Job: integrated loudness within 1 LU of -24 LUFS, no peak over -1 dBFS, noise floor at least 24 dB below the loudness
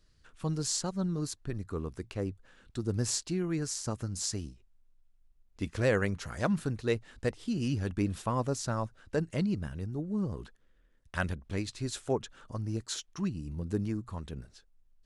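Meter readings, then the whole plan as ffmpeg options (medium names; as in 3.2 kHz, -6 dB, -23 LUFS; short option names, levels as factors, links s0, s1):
loudness -34.0 LUFS; peak level -15.0 dBFS; loudness target -24.0 LUFS
-> -af "volume=3.16"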